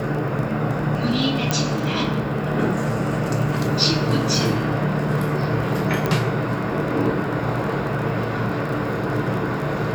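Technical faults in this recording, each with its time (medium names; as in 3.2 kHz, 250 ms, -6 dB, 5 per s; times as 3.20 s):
crackle 30 per s -27 dBFS
1.51 s: pop -5 dBFS
6.06 s: pop -9 dBFS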